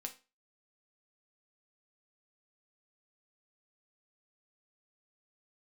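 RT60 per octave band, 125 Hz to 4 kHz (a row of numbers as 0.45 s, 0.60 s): 0.25 s, 0.30 s, 0.30 s, 0.30 s, 0.30 s, 0.30 s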